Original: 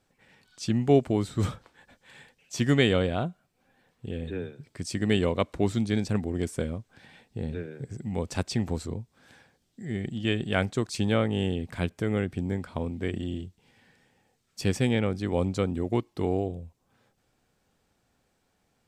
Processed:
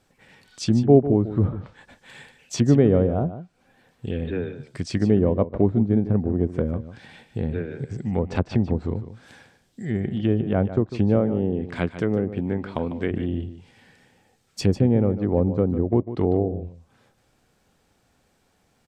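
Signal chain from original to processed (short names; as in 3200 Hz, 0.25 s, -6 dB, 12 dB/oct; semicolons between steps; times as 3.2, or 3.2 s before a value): 11.18–13.11 HPF 160 Hz 6 dB/oct; treble ducked by the level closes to 650 Hz, closed at -24 dBFS; on a send: echo 0.149 s -12.5 dB; on the sum: gain +6.5 dB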